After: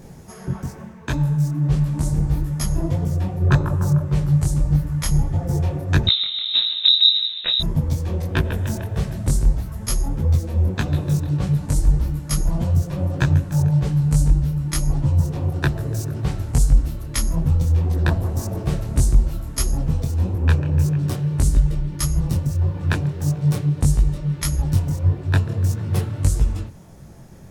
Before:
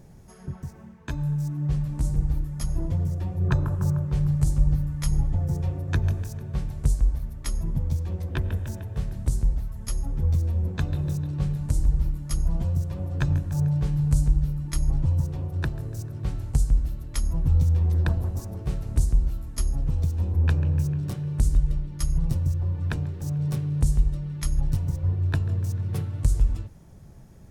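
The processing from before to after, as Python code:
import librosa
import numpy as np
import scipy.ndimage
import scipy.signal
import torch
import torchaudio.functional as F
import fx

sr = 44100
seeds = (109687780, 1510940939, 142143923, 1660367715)

p1 = fx.low_shelf(x, sr, hz=93.0, db=-9.0)
p2 = fx.rider(p1, sr, range_db=4, speed_s=0.5)
p3 = p1 + (p2 * librosa.db_to_amplitude(-1.0))
p4 = fx.freq_invert(p3, sr, carrier_hz=3800, at=(6.07, 7.6))
p5 = fx.detune_double(p4, sr, cents=57)
y = p5 * librosa.db_to_amplitude(7.5)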